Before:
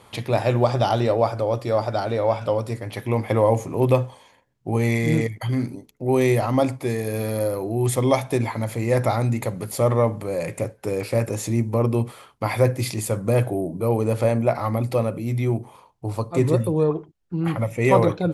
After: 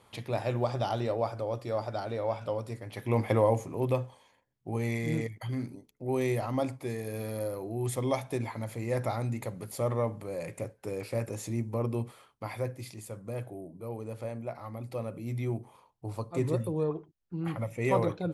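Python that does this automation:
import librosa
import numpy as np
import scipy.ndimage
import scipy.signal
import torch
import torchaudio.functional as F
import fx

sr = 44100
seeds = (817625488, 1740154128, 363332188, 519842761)

y = fx.gain(x, sr, db=fx.line((2.91, -10.5), (3.2, -3.5), (3.81, -10.5), (12.07, -10.5), (12.89, -17.5), (14.73, -17.5), (15.29, -10.0)))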